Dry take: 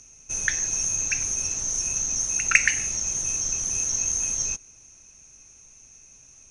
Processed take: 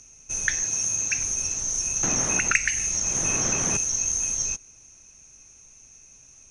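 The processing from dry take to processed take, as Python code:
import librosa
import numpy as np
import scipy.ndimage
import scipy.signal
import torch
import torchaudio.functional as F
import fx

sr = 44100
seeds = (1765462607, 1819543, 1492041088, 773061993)

y = fx.highpass(x, sr, hz=74.0, slope=12, at=(0.63, 1.18))
y = fx.band_squash(y, sr, depth_pct=100, at=(2.03, 3.77))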